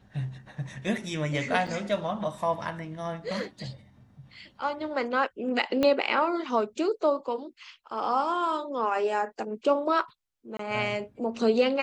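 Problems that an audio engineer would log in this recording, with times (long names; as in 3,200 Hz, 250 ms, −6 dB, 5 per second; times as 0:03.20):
0:01.67: drop-out 4.6 ms
0:05.83: click −13 dBFS
0:10.57–0:10.59: drop-out 23 ms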